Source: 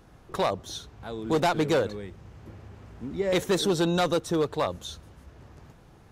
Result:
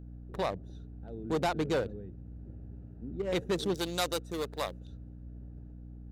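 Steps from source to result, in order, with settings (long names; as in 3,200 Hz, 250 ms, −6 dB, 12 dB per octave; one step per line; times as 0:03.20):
adaptive Wiener filter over 41 samples
0:03.74–0:04.81: RIAA equalisation recording
mains hum 60 Hz, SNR 10 dB
level −5.5 dB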